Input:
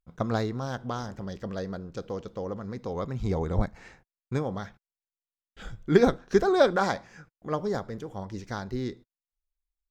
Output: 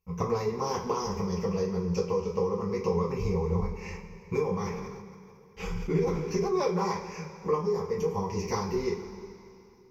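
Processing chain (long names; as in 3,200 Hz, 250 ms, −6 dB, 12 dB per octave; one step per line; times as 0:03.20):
EQ curve with evenly spaced ripples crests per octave 0.81, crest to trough 18 dB
downward compressor 16 to 1, threshold −32 dBFS, peak gain reduction 27 dB
convolution reverb, pre-delay 3 ms, DRR −6 dB
0:04.57–0:06.66: level that may fall only so fast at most 34 dB per second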